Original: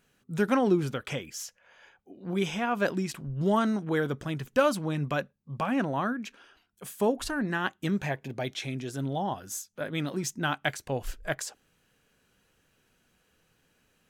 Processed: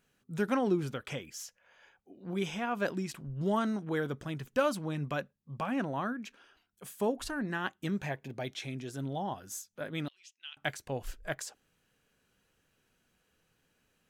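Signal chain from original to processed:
0:10.08–0:10.57: four-pole ladder band-pass 3,100 Hz, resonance 70%
level −5 dB

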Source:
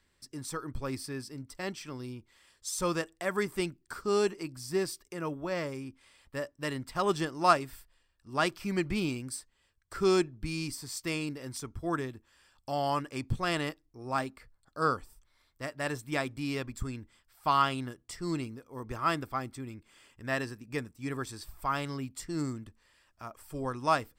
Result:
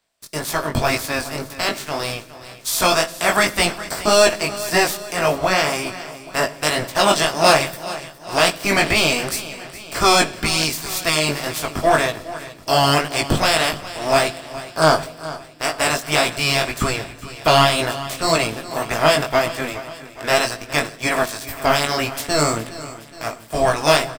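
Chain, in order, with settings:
ceiling on every frequency bin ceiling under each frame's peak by 22 dB
parametric band 660 Hz +13.5 dB 0.22 octaves
in parallel at +1 dB: brickwall limiter −15.5 dBFS, peak gain reduction 11 dB
on the sum: leveller curve on the samples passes 3
chorus effect 1.9 Hz, delay 17.5 ms, depth 3.3 ms
repeating echo 415 ms, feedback 53%, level −15.5 dB
on a send at −15 dB: convolution reverb RT60 1.0 s, pre-delay 7 ms

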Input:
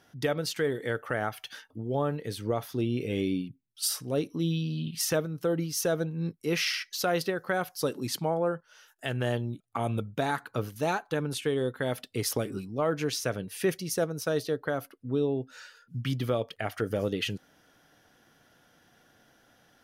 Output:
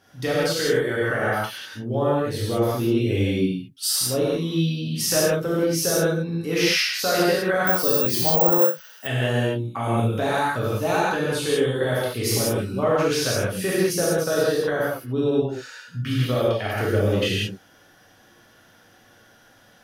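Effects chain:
reverb whose tail is shaped and stops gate 220 ms flat, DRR −8 dB
0:07.67–0:09.07: bad sample-rate conversion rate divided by 2×, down none, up zero stuff

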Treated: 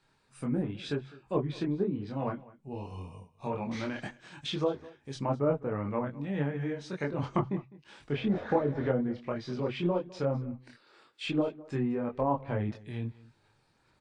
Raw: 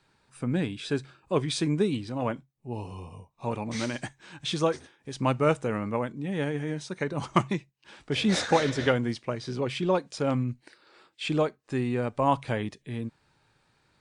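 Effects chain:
treble cut that deepens with the level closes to 790 Hz, closed at −22 dBFS
multi-voice chorus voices 6, 0.6 Hz, delay 25 ms, depth 4.8 ms
single-tap delay 205 ms −20.5 dB

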